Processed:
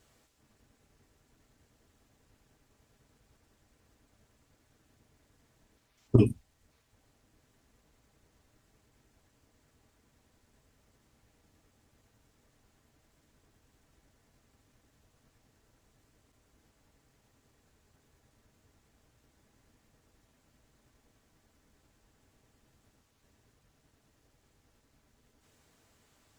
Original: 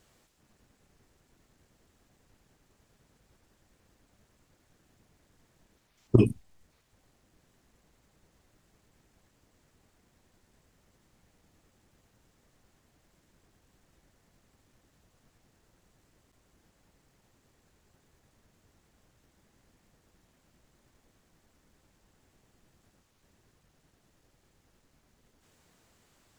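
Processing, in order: comb of notches 180 Hz

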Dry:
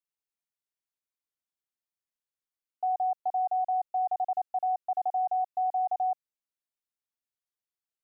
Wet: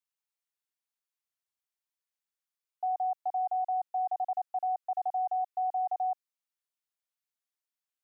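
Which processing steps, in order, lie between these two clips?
high-pass 690 Hz 12 dB/octave

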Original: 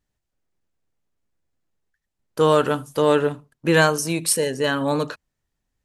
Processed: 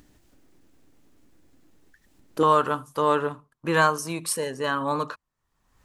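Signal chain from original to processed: peaking EQ 290 Hz +12.5 dB 0.66 oct, from 2.43 s 1.1 kHz; upward compressor, threshold -29 dBFS; trim -7.5 dB

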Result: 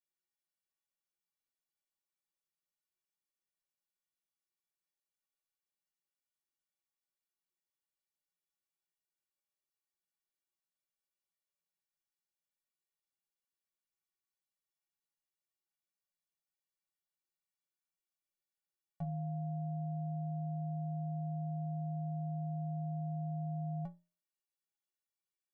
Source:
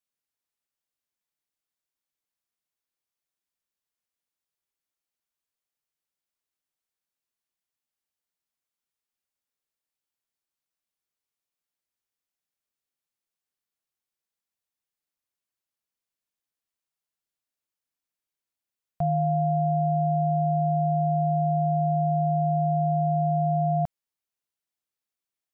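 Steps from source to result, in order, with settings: peak limiter -20.5 dBFS, peak gain reduction 3 dB; inharmonic resonator 170 Hz, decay 0.29 s, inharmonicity 0.03; de-hum 307.1 Hz, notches 28; trim +3.5 dB

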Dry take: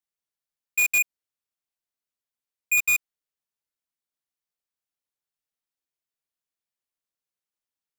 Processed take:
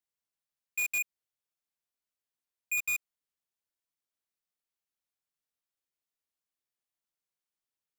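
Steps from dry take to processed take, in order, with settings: peak limiter -26.5 dBFS, peak gain reduction 7 dB; trim -2.5 dB

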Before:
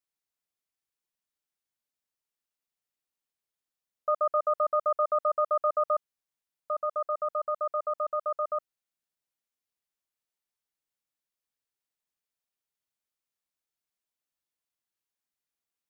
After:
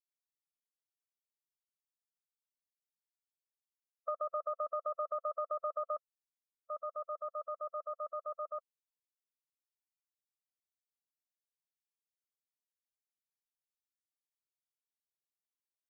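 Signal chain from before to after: expander on every frequency bin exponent 2; compression, threshold -28 dBFS, peak gain reduction 6 dB; trim -5 dB

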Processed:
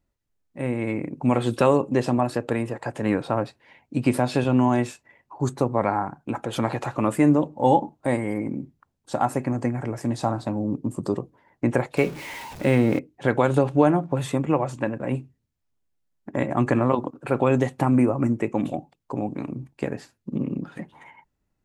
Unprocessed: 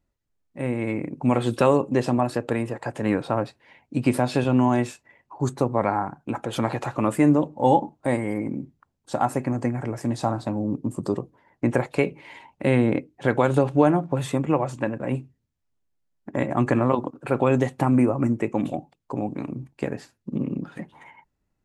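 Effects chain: 11.97–12.99 s: jump at every zero crossing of -34 dBFS

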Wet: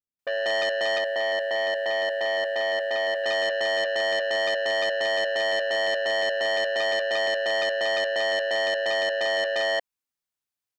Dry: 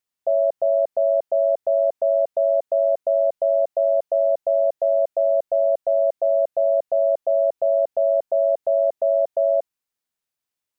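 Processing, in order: bands offset in time lows, highs 190 ms, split 470 Hz; waveshaping leveller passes 2; 0.98–3.24 s: bass shelf 380 Hz -7 dB; transformer saturation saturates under 2.2 kHz

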